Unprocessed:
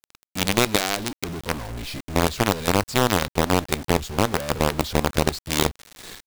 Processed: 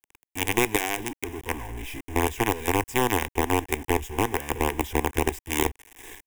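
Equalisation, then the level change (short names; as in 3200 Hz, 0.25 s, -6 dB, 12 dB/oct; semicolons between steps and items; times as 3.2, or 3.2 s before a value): fixed phaser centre 880 Hz, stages 8; 0.0 dB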